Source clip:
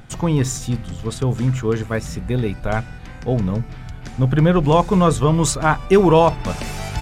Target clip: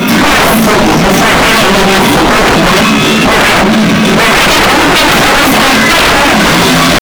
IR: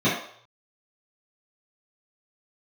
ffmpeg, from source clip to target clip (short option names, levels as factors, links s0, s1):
-filter_complex "[0:a]asplit=2[s0][s1];[s1]highpass=f=720:p=1,volume=20,asoftclip=type=tanh:threshold=0.668[s2];[s0][s2]amix=inputs=2:normalize=0,lowpass=f=3200:p=1,volume=0.501,asetrate=76340,aresample=44100,atempo=0.577676,acrossover=split=460[s3][s4];[s4]alimiter=limit=0.251:level=0:latency=1[s5];[s3][s5]amix=inputs=2:normalize=0[s6];[1:a]atrim=start_sample=2205,asetrate=41454,aresample=44100[s7];[s6][s7]afir=irnorm=-1:irlink=0,acrusher=bits=4:mix=0:aa=0.5,highpass=f=43:w=0.5412,highpass=f=43:w=1.3066,acontrast=88,asoftclip=type=tanh:threshold=0.447,equalizer=f=89:w=3.3:g=-11.5,volume=1.33"